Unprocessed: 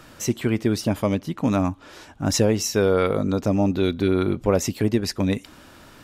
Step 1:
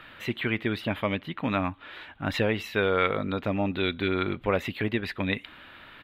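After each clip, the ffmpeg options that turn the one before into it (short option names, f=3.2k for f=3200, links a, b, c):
-af "firequalizer=gain_entry='entry(290,0);entry(1900,14);entry(3700,10);entry(5600,-19);entry(14000,-5)':delay=0.05:min_phase=1,volume=-8dB"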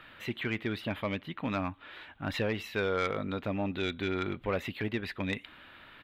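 -af "asoftclip=type=tanh:threshold=-16dB,volume=-4.5dB"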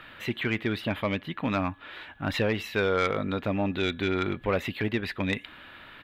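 -af "aeval=exprs='val(0)+0.000631*sin(2*PI*1700*n/s)':c=same,volume=5dB"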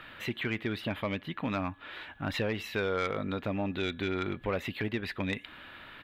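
-af "acompressor=threshold=-34dB:ratio=1.5,volume=-1dB"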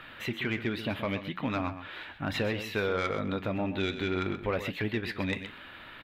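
-af "flanger=delay=7.6:depth=6.4:regen=-75:speed=0.66:shape=sinusoidal,aecho=1:1:128:0.282,volume=5.5dB"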